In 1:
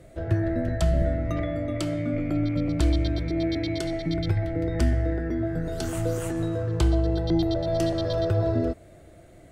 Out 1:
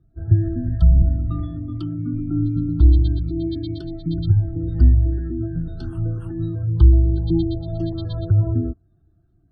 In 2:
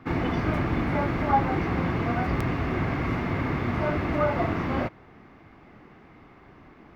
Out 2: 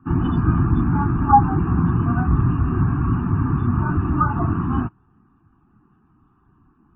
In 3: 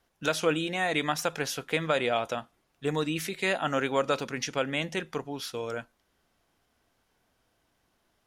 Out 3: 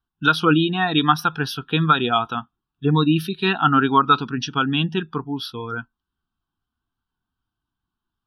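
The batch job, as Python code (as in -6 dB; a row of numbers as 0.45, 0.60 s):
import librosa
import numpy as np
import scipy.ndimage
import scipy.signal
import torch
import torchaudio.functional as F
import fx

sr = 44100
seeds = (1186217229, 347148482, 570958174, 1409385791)

y = fx.spec_gate(x, sr, threshold_db=-30, keep='strong')
y = fx.fixed_phaser(y, sr, hz=2100.0, stages=6)
y = fx.spectral_expand(y, sr, expansion=1.5)
y = librosa.util.normalize(y) * 10.0 ** (-2 / 20.0)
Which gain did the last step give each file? +11.0, +12.5, +14.5 dB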